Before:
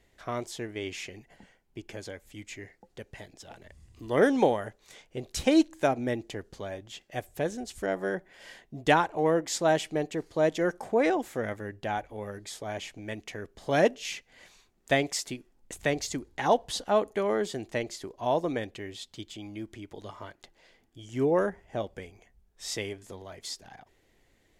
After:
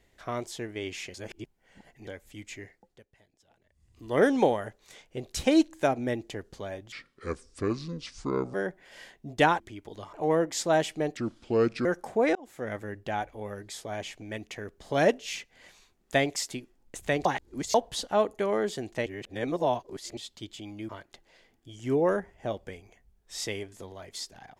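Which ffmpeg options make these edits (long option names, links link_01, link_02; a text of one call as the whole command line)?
ffmpeg -i in.wav -filter_complex "[0:a]asplit=17[link_01][link_02][link_03][link_04][link_05][link_06][link_07][link_08][link_09][link_10][link_11][link_12][link_13][link_14][link_15][link_16][link_17];[link_01]atrim=end=1.142[link_18];[link_02]atrim=start=1.138:end=2.072,asetpts=PTS-STARTPTS,areverse[link_19];[link_03]atrim=start=2.068:end=3.06,asetpts=PTS-STARTPTS,afade=type=out:start_time=0.542:duration=0.45:silence=0.11885[link_20];[link_04]atrim=start=3.06:end=3.74,asetpts=PTS-STARTPTS,volume=-18.5dB[link_21];[link_05]atrim=start=3.74:end=6.924,asetpts=PTS-STARTPTS,afade=type=in:duration=0.45:silence=0.11885[link_22];[link_06]atrim=start=6.92:end=8.02,asetpts=PTS-STARTPTS,asetrate=29988,aresample=44100,atrim=end_sample=71338,asetpts=PTS-STARTPTS[link_23];[link_07]atrim=start=8.016:end=9.082[link_24];[link_08]atrim=start=19.658:end=20.192[link_25];[link_09]atrim=start=9.078:end=10.124[link_26];[link_10]atrim=start=10.12:end=10.62,asetpts=PTS-STARTPTS,asetrate=32193,aresample=44100,atrim=end_sample=30205,asetpts=PTS-STARTPTS[link_27];[link_11]atrim=start=10.616:end=11.12,asetpts=PTS-STARTPTS,afade=type=out:start_time=0.5:duration=0.004:curve=hsin[link_28];[link_12]atrim=start=11.12:end=16.022,asetpts=PTS-STARTPTS,afade=type=in:duration=0.42[link_29];[link_13]atrim=start=16.018:end=16.512,asetpts=PTS-STARTPTS,areverse[link_30];[link_14]atrim=start=16.508:end=17.832[link_31];[link_15]atrim=start=17.828:end=18.942,asetpts=PTS-STARTPTS,areverse[link_32];[link_16]atrim=start=18.938:end=19.662[link_33];[link_17]atrim=start=20.188[link_34];[link_18][link_19]acrossfade=duration=0.004:curve1=hsin:curve2=hsin[link_35];[link_20][link_21][link_22]concat=n=3:v=0:a=1[link_36];[link_35][link_36]acrossfade=duration=0.004:curve1=hsin:curve2=hsin[link_37];[link_37][link_23]acrossfade=duration=0.004:curve1=hsin:curve2=hsin[link_38];[link_38][link_24]acrossfade=duration=0.004:curve1=hsin:curve2=hsin[link_39];[link_39][link_25]acrossfade=duration=0.004:curve1=hsin:curve2=hsin[link_40];[link_40][link_26]acrossfade=duration=0.004:curve1=hsin:curve2=hsin[link_41];[link_41][link_27]acrossfade=duration=0.004:curve1=hsin:curve2=hsin[link_42];[link_28][link_29]concat=n=2:v=0:a=1[link_43];[link_42][link_43]acrossfade=duration=0.004:curve1=hsin:curve2=hsin[link_44];[link_44][link_30]acrossfade=duration=0.004:curve1=hsin:curve2=hsin[link_45];[link_45][link_31]acrossfade=duration=0.004:curve1=hsin:curve2=hsin[link_46];[link_46][link_32]acrossfade=duration=0.004:curve1=hsin:curve2=hsin[link_47];[link_47][link_33]acrossfade=duration=0.004:curve1=hsin:curve2=hsin[link_48];[link_48][link_34]acrossfade=duration=0.004:curve1=hsin:curve2=hsin" out.wav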